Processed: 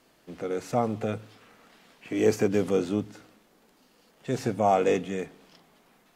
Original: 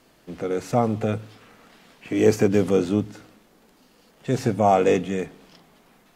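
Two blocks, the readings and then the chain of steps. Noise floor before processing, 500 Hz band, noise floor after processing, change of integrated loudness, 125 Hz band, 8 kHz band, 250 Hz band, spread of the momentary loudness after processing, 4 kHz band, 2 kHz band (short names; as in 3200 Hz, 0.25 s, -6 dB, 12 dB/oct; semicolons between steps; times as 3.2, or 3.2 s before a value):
-58 dBFS, -4.5 dB, -63 dBFS, -5.0 dB, -7.5 dB, -4.0 dB, -6.0 dB, 15 LU, -4.0 dB, -4.0 dB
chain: low shelf 170 Hz -5.5 dB; gain -4 dB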